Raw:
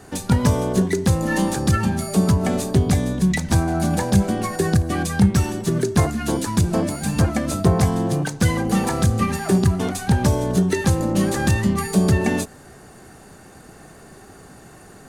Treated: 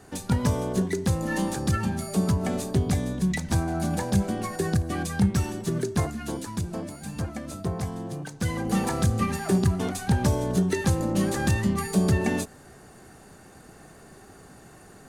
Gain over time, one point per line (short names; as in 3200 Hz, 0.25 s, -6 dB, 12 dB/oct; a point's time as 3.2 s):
5.77 s -6.5 dB
6.82 s -13 dB
8.23 s -13 dB
8.75 s -5 dB